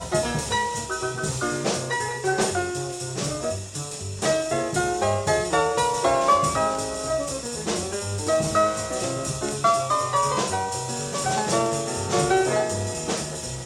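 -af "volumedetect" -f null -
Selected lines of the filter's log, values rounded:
mean_volume: -24.5 dB
max_volume: -9.1 dB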